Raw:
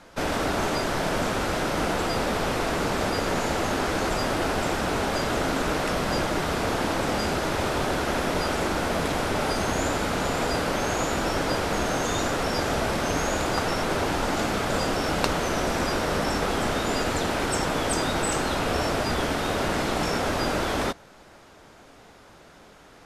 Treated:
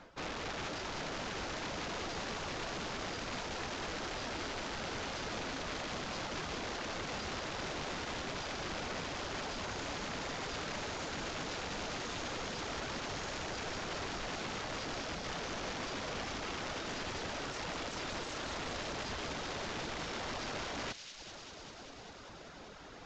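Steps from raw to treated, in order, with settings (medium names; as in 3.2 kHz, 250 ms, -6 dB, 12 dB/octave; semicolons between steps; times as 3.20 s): reverb removal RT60 0.67 s; reverse; compression 4:1, threshold -39 dBFS, peak gain reduction 17.5 dB; reverse; integer overflow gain 33.5 dB; distance through air 86 m; feedback echo behind a high-pass 196 ms, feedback 82%, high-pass 3.7 kHz, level -4 dB; trim +1 dB; µ-law 128 kbps 16 kHz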